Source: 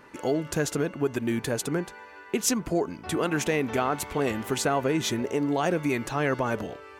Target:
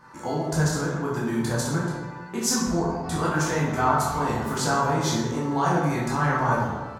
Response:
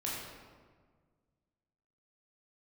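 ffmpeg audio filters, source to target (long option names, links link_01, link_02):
-filter_complex "[0:a]firequalizer=gain_entry='entry(130,0);entry(420,-10);entry(930,5);entry(2600,-12);entry(4500,1);entry(12000,-4)':delay=0.05:min_phase=1[link_01];[1:a]atrim=start_sample=2205,asetrate=61740,aresample=44100[link_02];[link_01][link_02]afir=irnorm=-1:irlink=0,volume=4.5dB"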